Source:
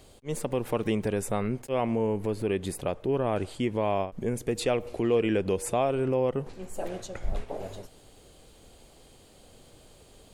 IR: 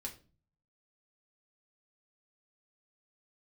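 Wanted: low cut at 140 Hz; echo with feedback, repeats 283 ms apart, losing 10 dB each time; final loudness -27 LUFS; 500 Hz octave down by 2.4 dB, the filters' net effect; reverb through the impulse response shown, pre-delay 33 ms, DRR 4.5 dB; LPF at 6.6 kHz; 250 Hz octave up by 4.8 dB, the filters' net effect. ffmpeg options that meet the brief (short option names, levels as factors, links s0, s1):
-filter_complex "[0:a]highpass=140,lowpass=6600,equalizer=f=250:t=o:g=8,equalizer=f=500:t=o:g=-5.5,aecho=1:1:283|566|849|1132:0.316|0.101|0.0324|0.0104,asplit=2[s0][s1];[1:a]atrim=start_sample=2205,adelay=33[s2];[s1][s2]afir=irnorm=-1:irlink=0,volume=0.794[s3];[s0][s3]amix=inputs=2:normalize=0,volume=0.891"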